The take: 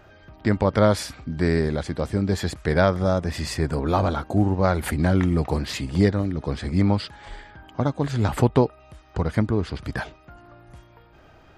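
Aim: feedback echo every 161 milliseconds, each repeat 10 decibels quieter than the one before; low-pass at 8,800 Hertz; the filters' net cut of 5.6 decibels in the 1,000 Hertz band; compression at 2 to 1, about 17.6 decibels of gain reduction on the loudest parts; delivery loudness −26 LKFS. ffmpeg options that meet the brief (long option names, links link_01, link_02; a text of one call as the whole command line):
ffmpeg -i in.wav -af "lowpass=8800,equalizer=frequency=1000:width_type=o:gain=-8,acompressor=threshold=-47dB:ratio=2,aecho=1:1:161|322|483|644:0.316|0.101|0.0324|0.0104,volume=13dB" out.wav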